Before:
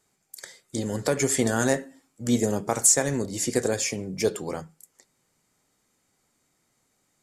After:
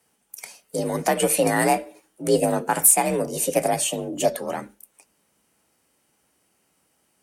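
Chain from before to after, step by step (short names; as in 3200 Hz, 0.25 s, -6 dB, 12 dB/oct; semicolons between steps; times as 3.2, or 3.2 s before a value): frequency shift +46 Hz; formant shift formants +4 st; gain +3.5 dB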